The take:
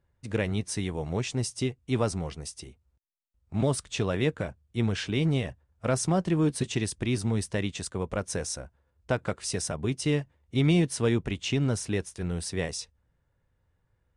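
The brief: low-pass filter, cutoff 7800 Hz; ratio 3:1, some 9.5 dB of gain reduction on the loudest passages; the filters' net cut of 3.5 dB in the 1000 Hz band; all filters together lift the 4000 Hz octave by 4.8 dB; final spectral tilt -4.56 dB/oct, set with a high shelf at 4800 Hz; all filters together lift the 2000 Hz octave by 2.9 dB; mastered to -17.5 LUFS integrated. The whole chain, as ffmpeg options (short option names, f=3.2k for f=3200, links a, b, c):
-af "lowpass=7.8k,equalizer=f=1k:t=o:g=-6.5,equalizer=f=2k:t=o:g=3.5,equalizer=f=4k:t=o:g=7.5,highshelf=f=4.8k:g=-3,acompressor=threshold=-33dB:ratio=3,volume=18.5dB"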